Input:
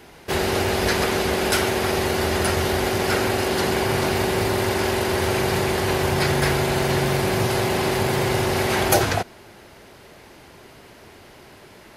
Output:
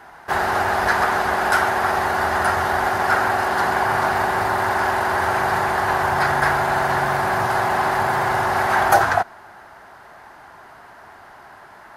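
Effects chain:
flat-topped bell 1,100 Hz +15 dB
level −6.5 dB

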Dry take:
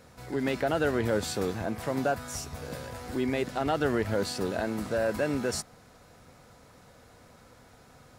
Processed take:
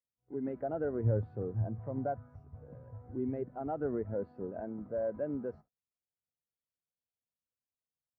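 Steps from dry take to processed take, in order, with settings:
phase distortion by the signal itself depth 0.075 ms
0:01.04–0:03.51: parametric band 110 Hz +13 dB 0.3 octaves
noise gate −41 dBFS, range −19 dB
low-pass filter 1,300 Hz 12 dB per octave
every bin expanded away from the loudest bin 1.5 to 1
level −5.5 dB

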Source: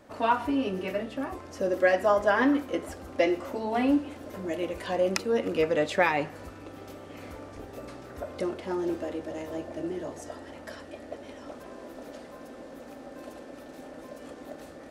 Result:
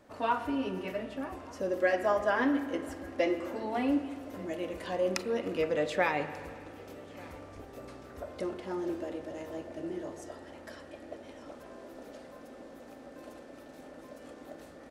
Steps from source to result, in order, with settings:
single-tap delay 1,189 ms −24 dB
spring reverb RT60 2 s, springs 33/42 ms, chirp 30 ms, DRR 10 dB
level −5 dB

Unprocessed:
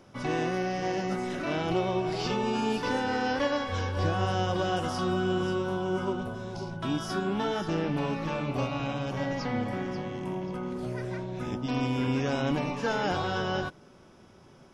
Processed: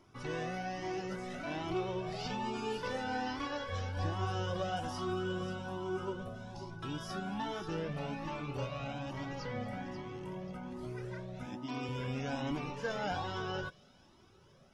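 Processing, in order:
0:11.46–0:11.89: high-pass filter 160 Hz 12 dB per octave
delay with a high-pass on its return 228 ms, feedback 73%, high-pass 3,600 Hz, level −18.5 dB
flanger whose copies keep moving one way rising 1.2 Hz
level −3.5 dB

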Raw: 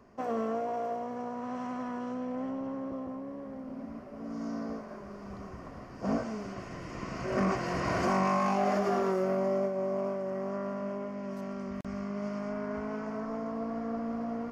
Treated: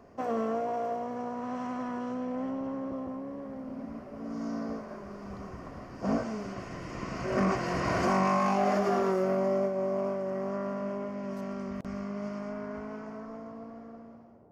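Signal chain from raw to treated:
fade-out on the ending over 2.97 s
noise in a band 66–710 Hz −60 dBFS
level +1.5 dB

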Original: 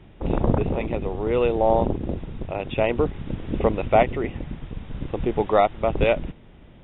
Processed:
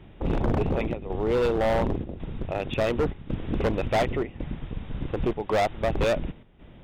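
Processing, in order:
square-wave tremolo 0.91 Hz, depth 65%, duty 85%
hard clipping −19.5 dBFS, distortion −7 dB

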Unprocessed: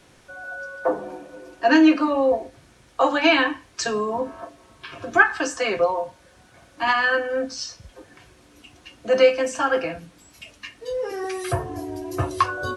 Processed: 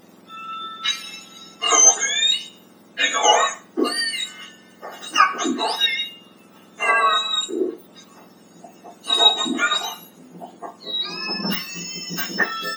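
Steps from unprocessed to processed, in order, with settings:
frequency axis turned over on the octave scale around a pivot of 1,400 Hz
hum removal 148.5 Hz, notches 30
level +4.5 dB

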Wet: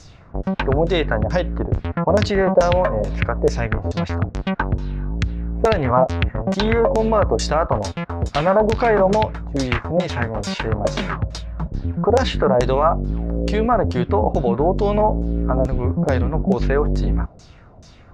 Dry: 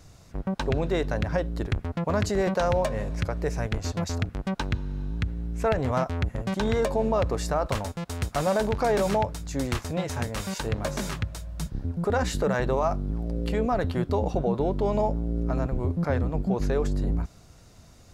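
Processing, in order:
auto-filter low-pass saw down 2.3 Hz 500–6,800 Hz
level +6.5 dB

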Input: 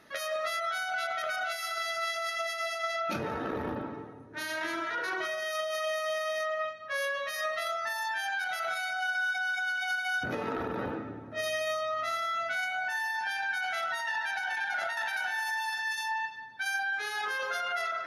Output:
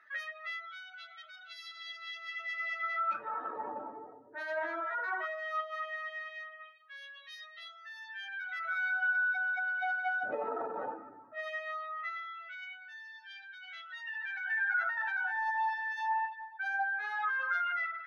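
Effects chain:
expanding power law on the bin magnitudes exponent 1.7
RIAA equalisation playback
auto-filter high-pass sine 0.17 Hz 670–3,600 Hz
level −3.5 dB

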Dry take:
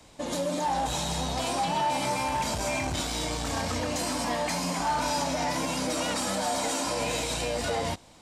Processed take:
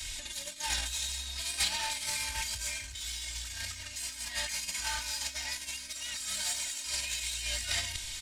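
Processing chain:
in parallel at −11.5 dB: wave folding −26.5 dBFS
on the sum: brickwall limiter −24.5 dBFS, peak gain reduction 5.5 dB
flat-topped bell 770 Hz −12.5 dB
comb filter 3.2 ms, depth 98%
compressor whose output falls as the input rises −37 dBFS, ratio −0.5
guitar amp tone stack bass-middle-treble 10-0-10
level +8 dB

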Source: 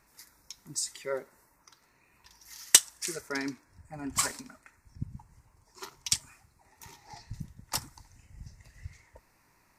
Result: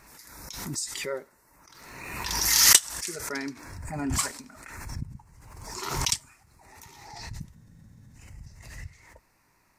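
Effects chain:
frozen spectrum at 0:07.56, 0.58 s
background raised ahead of every attack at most 38 dB per second

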